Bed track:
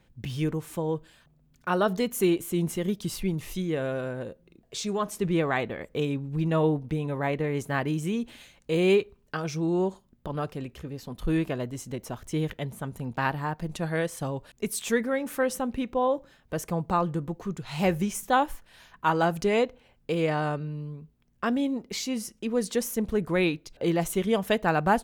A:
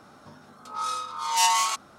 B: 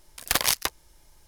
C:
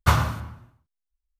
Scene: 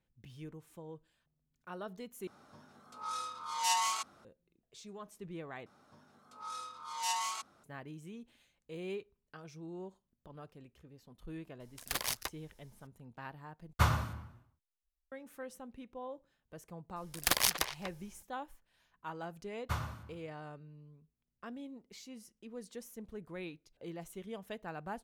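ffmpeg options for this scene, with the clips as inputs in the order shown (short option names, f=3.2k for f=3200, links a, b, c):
-filter_complex "[1:a]asplit=2[a][b];[2:a]asplit=2[c][d];[3:a]asplit=2[e][f];[0:a]volume=-19.5dB[g];[c]asoftclip=type=tanh:threshold=-15dB[h];[d]asplit=2[i][j];[j]adelay=240,highpass=300,lowpass=3.4k,asoftclip=type=hard:threshold=-18dB,volume=-8dB[k];[i][k]amix=inputs=2:normalize=0[l];[g]asplit=4[m][n][o][p];[m]atrim=end=2.274[q];[a]atrim=end=1.98,asetpts=PTS-STARTPTS,volume=-9.5dB[r];[n]atrim=start=4.246:end=5.664[s];[b]atrim=end=1.98,asetpts=PTS-STARTPTS,volume=-13.5dB[t];[o]atrim=start=7.636:end=13.734[u];[e]atrim=end=1.39,asetpts=PTS-STARTPTS,volume=-9dB[v];[p]atrim=start=15.116[w];[h]atrim=end=1.27,asetpts=PTS-STARTPTS,volume=-10dB,afade=t=in:d=0.004:c=hsin,afade=t=out:st=1.266:d=0.004:c=hsin,adelay=11600[x];[l]atrim=end=1.27,asetpts=PTS-STARTPTS,volume=-6dB,afade=t=in:d=0.004:c=hsin,afade=t=out:st=1.266:d=0.004:c=hsin,adelay=16960[y];[f]atrim=end=1.39,asetpts=PTS-STARTPTS,volume=-17.5dB,afade=t=in:d=0.004:c=hsin,afade=t=out:st=1.386:d=0.004:c=hsin,adelay=19630[z];[q][r]acrossfade=d=0.004:c1=hsin:c2=hsin[aa];[aa][s]acrossfade=d=0.004:c1=hsin:c2=hsin[ab];[ab][t]acrossfade=d=0.004:c1=hsin:c2=hsin[ac];[ac][u]acrossfade=d=0.004:c1=hsin:c2=hsin[ad];[ad][v]acrossfade=d=0.004:c1=hsin:c2=hsin[ae];[ae][w]acrossfade=d=0.004:c1=hsin:c2=hsin[af];[af][x][y][z]amix=inputs=4:normalize=0"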